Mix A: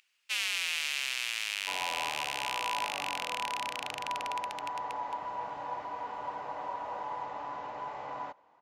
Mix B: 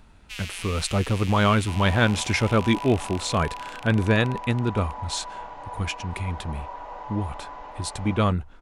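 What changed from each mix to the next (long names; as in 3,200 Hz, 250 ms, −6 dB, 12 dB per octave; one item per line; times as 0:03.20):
speech: unmuted
first sound −5.5 dB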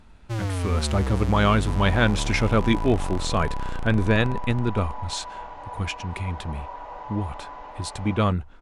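first sound: remove high-pass with resonance 2,600 Hz, resonance Q 3.4
master: add high-shelf EQ 9,500 Hz −7 dB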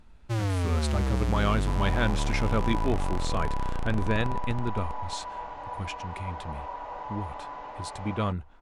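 speech −7.0 dB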